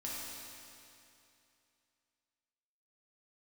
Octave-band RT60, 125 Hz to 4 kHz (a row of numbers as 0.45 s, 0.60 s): 2.7 s, 2.7 s, 2.7 s, 2.7 s, 2.7 s, 2.6 s